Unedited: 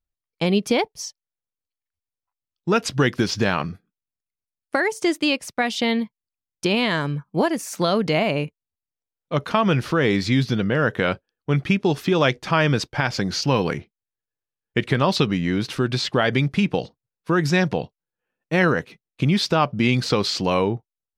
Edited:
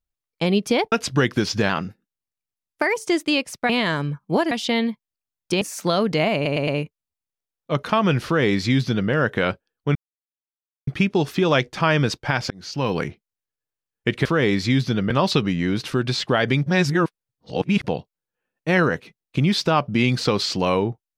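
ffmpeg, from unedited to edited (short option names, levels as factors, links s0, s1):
-filter_complex "[0:a]asplit=16[s0][s1][s2][s3][s4][s5][s6][s7][s8][s9][s10][s11][s12][s13][s14][s15];[s0]atrim=end=0.922[s16];[s1]atrim=start=2.738:end=3.514[s17];[s2]atrim=start=3.51:end=4.91,asetpts=PTS-STARTPTS,asetrate=48510,aresample=44100,atrim=end_sample=56127,asetpts=PTS-STARTPTS[s18];[s3]atrim=start=4.906:end=5.642[s19];[s4]atrim=start=6.738:end=7.562[s20];[s5]atrim=start=5.638:end=6.742[s21];[s6]atrim=start=7.558:end=8.402[s22];[s7]atrim=start=8.288:end=8.402[s23];[s8]atrim=start=8.288:end=8.402[s24];[s9]atrim=start=8.288:end=11.57,asetpts=PTS-STARTPTS,afade=t=out:st=3.278:d=0.004:c=hsin,apad=pad_dur=0.92[s25];[s10]atrim=start=11.57:end=13.2,asetpts=PTS-STARTPTS,afade=t=in:d=0.004:c=hsin,afade=t=out:st=1.626:d=0.004:c=hsin[s26];[s11]atrim=start=13.2:end=14.952,asetpts=PTS-STARTPTS,afade=t=in:d=0.51[s27];[s12]atrim=start=9.868:end=10.722[s28];[s13]atrim=start=14.948:end=16.512[s29];[s14]atrim=start=16.508:end=17.692,asetpts=PTS-STARTPTS,areverse[s30];[s15]atrim=start=17.688[s31];[s16][s17]acrossfade=d=0.004:c1=hsin:c2=hsin[s32];[s32][s18]acrossfade=d=0.004:c1=hsin:c2=hsin[s33];[s33][s19]acrossfade=d=0.004:c1=hsin:c2=hsin[s34];[s34][s20]acrossfade=d=0.004:c1=hsin:c2=hsin[s35];[s35][s21]acrossfade=d=0.004:c1=hsin:c2=hsin[s36];[s36][s22]acrossfade=d=0.004:c1=hsin:c2=hsin[s37];[s37][s23]acrossfade=d=0.004:c1=hsin:c2=hsin[s38];[s38][s24]acrossfade=d=0.004:c1=hsin:c2=hsin[s39];[s25][s26][s27]concat=n=3:v=0:a=1[s40];[s39][s40]acrossfade=d=0.004:c1=hsin:c2=hsin[s41];[s41][s28]acrossfade=d=0.004:c1=hsin:c2=hsin[s42];[s42][s29]acrossfade=d=0.004:c1=hsin:c2=hsin[s43];[s43][s30]acrossfade=d=0.004:c1=hsin:c2=hsin[s44];[s44][s31]acrossfade=d=0.004:c1=hsin:c2=hsin"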